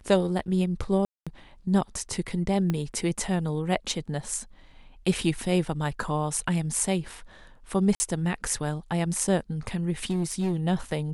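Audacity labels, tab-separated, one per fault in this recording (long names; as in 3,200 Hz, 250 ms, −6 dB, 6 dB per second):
1.050000	1.270000	drop-out 216 ms
2.700000	2.700000	click −15 dBFS
7.950000	8.000000	drop-out 50 ms
10.040000	10.570000	clipping −22 dBFS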